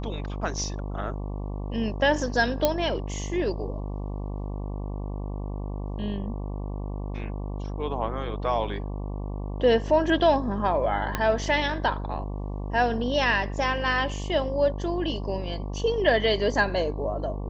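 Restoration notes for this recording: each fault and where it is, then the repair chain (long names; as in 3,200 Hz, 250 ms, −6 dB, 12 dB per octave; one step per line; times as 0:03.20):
mains buzz 50 Hz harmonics 23 −32 dBFS
0:02.65: click −7 dBFS
0:11.15: click −10 dBFS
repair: click removal
hum removal 50 Hz, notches 23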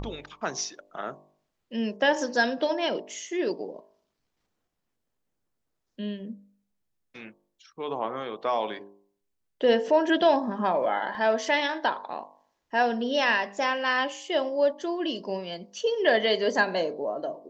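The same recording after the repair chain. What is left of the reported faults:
0:11.15: click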